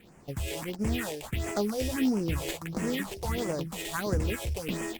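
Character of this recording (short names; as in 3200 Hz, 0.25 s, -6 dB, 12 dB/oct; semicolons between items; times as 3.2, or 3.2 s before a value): aliases and images of a low sample rate 5400 Hz, jitter 20%; phasing stages 4, 1.5 Hz, lowest notch 190–3700 Hz; Opus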